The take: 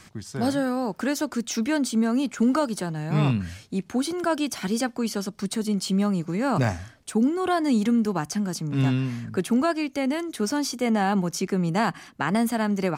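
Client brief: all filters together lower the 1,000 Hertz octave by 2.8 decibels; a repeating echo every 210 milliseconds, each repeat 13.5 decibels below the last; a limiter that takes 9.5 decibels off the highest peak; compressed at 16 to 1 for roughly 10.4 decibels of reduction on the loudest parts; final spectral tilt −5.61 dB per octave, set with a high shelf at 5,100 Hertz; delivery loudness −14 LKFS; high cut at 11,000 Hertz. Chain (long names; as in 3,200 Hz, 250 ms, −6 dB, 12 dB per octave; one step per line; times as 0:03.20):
low-pass filter 11,000 Hz
parametric band 1,000 Hz −3.5 dB
high-shelf EQ 5,100 Hz −8 dB
downward compressor 16 to 1, threshold −28 dBFS
brickwall limiter −26 dBFS
repeating echo 210 ms, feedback 21%, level −13.5 dB
level +20.5 dB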